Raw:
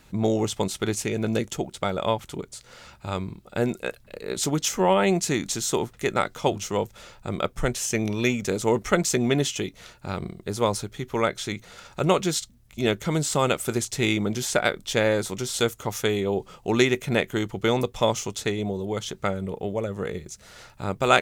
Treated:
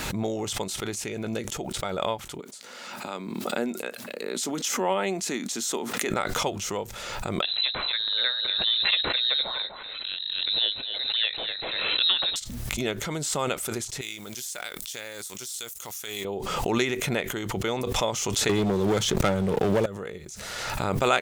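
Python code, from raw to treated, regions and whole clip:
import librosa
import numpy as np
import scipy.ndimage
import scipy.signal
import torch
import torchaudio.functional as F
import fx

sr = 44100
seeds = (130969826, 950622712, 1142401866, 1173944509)

y = fx.chain(x, sr, fx.highpass(hz=190.0, slope=24),
    fx.peak_eq(hz=240.0, db=7.0, octaves=0.32), at=(2.4, 6.09))
y = fx.chain(y, sr, fx.freq_invert(carrier_hz=4000),
    fx.echo_single(ms=245, db=-10.5), at=(7.42, 12.36))
y = fx.chain(y, sr, fx.law_mismatch(coded='A'),
    fx.pre_emphasis(coefficient=0.9),
    fx.env_flatten(amount_pct=50), at=(14.01, 16.25))
y = fx.chain(y, sr, fx.low_shelf(hz=450.0, db=5.5),
    fx.leveller(passes=3),
    fx.band_squash(depth_pct=40), at=(18.49, 19.86))
y = fx.low_shelf(y, sr, hz=290.0, db=-7.0)
y = fx.pre_swell(y, sr, db_per_s=26.0)
y = y * 10.0 ** (-4.5 / 20.0)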